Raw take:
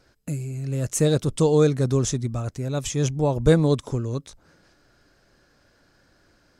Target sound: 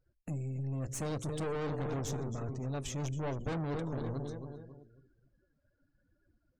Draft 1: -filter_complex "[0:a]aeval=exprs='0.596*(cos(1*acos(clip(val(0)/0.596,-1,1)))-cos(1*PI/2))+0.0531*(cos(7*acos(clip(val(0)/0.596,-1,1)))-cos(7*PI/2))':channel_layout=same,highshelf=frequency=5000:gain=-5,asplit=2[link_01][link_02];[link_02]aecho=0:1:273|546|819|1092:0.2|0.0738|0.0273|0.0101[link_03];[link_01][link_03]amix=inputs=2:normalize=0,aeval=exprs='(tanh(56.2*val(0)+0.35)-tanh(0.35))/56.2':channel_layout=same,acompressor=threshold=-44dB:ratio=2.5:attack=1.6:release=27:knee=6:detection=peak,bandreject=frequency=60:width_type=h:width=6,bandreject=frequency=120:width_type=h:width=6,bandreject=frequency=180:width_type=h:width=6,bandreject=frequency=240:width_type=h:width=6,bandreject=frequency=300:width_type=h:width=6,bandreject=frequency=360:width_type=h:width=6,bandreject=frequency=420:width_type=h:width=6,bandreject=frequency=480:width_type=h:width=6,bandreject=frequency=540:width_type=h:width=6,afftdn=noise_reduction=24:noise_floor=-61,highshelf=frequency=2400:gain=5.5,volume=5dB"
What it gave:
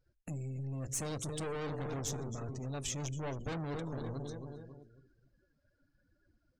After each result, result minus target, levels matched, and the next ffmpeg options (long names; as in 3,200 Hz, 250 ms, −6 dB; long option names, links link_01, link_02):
4,000 Hz band +4.5 dB; downward compressor: peak gain reduction +3.5 dB
-filter_complex "[0:a]aeval=exprs='0.596*(cos(1*acos(clip(val(0)/0.596,-1,1)))-cos(1*PI/2))+0.0531*(cos(7*acos(clip(val(0)/0.596,-1,1)))-cos(7*PI/2))':channel_layout=same,highshelf=frequency=5000:gain=-5,asplit=2[link_01][link_02];[link_02]aecho=0:1:273|546|819|1092:0.2|0.0738|0.0273|0.0101[link_03];[link_01][link_03]amix=inputs=2:normalize=0,aeval=exprs='(tanh(56.2*val(0)+0.35)-tanh(0.35))/56.2':channel_layout=same,acompressor=threshold=-44dB:ratio=2.5:attack=1.6:release=27:knee=6:detection=peak,bandreject=frequency=60:width_type=h:width=6,bandreject=frequency=120:width_type=h:width=6,bandreject=frequency=180:width_type=h:width=6,bandreject=frequency=240:width_type=h:width=6,bandreject=frequency=300:width_type=h:width=6,bandreject=frequency=360:width_type=h:width=6,bandreject=frequency=420:width_type=h:width=6,bandreject=frequency=480:width_type=h:width=6,bandreject=frequency=540:width_type=h:width=6,afftdn=noise_reduction=24:noise_floor=-61,highshelf=frequency=2400:gain=-3,volume=5dB"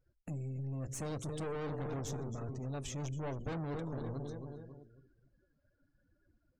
downward compressor: peak gain reduction +3.5 dB
-filter_complex "[0:a]aeval=exprs='0.596*(cos(1*acos(clip(val(0)/0.596,-1,1)))-cos(1*PI/2))+0.0531*(cos(7*acos(clip(val(0)/0.596,-1,1)))-cos(7*PI/2))':channel_layout=same,highshelf=frequency=5000:gain=-5,asplit=2[link_01][link_02];[link_02]aecho=0:1:273|546|819|1092:0.2|0.0738|0.0273|0.0101[link_03];[link_01][link_03]amix=inputs=2:normalize=0,aeval=exprs='(tanh(56.2*val(0)+0.35)-tanh(0.35))/56.2':channel_layout=same,acompressor=threshold=-38dB:ratio=2.5:attack=1.6:release=27:knee=6:detection=peak,bandreject=frequency=60:width_type=h:width=6,bandreject=frequency=120:width_type=h:width=6,bandreject=frequency=180:width_type=h:width=6,bandreject=frequency=240:width_type=h:width=6,bandreject=frequency=300:width_type=h:width=6,bandreject=frequency=360:width_type=h:width=6,bandreject=frequency=420:width_type=h:width=6,bandreject=frequency=480:width_type=h:width=6,bandreject=frequency=540:width_type=h:width=6,afftdn=noise_reduction=24:noise_floor=-61,highshelf=frequency=2400:gain=-3,volume=5dB"